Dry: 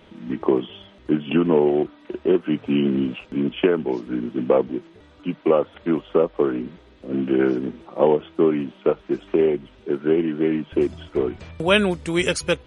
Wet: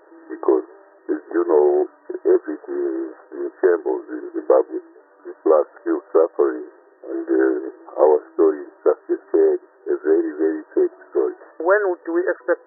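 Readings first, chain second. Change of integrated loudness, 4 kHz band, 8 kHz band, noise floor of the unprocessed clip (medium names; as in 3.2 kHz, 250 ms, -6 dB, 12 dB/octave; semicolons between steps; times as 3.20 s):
+1.5 dB, under -40 dB, no reading, -50 dBFS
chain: brick-wall FIR band-pass 310–1900 Hz; trim +3 dB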